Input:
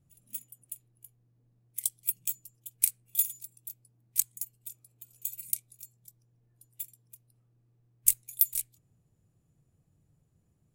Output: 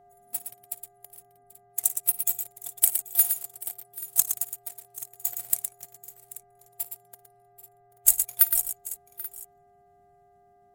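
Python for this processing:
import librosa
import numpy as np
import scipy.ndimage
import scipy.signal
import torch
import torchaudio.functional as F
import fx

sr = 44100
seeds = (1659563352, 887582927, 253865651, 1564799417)

p1 = fx.spec_quant(x, sr, step_db=30)
p2 = p1 + 10.0 ** (-52.0 / 20.0) * np.sin(2.0 * np.pi * 710.0 * np.arange(len(p1)) / sr)
p3 = fx.leveller(p2, sr, passes=2)
p4 = p3 + fx.echo_multitap(p3, sr, ms=(55, 115, 785, 833), db=(-19.0, -7.5, -20.0, -18.5), dry=0)
y = fx.dmg_buzz(p4, sr, base_hz=400.0, harmonics=5, level_db=-66.0, tilt_db=-9, odd_only=False)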